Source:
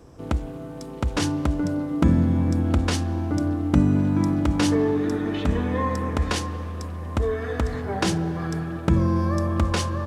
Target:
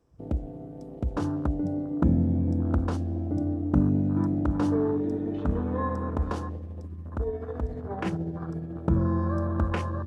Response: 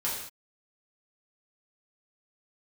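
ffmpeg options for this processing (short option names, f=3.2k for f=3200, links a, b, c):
-filter_complex "[0:a]afwtdn=0.0355,asplit=3[a][b][c];[a]afade=t=out:st=6.55:d=0.02[d];[b]tremolo=f=14:d=0.44,afade=t=in:st=6.55:d=0.02,afade=t=out:st=8.74:d=0.02[e];[c]afade=t=in:st=8.74:d=0.02[f];[d][e][f]amix=inputs=3:normalize=0,volume=-4dB"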